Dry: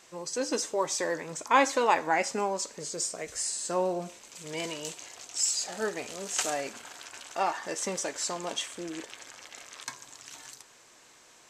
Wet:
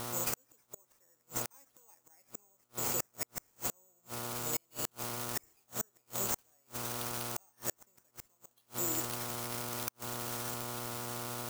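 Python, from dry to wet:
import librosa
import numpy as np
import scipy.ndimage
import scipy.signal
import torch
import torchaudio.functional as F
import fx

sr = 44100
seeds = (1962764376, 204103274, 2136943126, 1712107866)

p1 = fx.quant_dither(x, sr, seeds[0], bits=6, dither='triangular')
p2 = x + (p1 * 10.0 ** (-7.5 / 20.0))
p3 = (np.kron(p2[::6], np.eye(6)[0]) * 6)[:len(p2)]
p4 = fx.dmg_buzz(p3, sr, base_hz=120.0, harmonics=12, level_db=-35.0, tilt_db=-2, odd_only=False)
p5 = fx.gate_flip(p4, sr, shuts_db=-6.0, range_db=-41)
y = p5 * 10.0 ** (-8.0 / 20.0)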